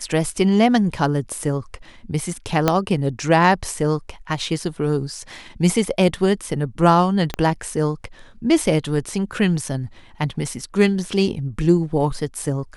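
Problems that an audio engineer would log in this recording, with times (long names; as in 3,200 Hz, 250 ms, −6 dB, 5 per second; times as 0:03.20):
0:02.68: click −2 dBFS
0:07.34: click −10 dBFS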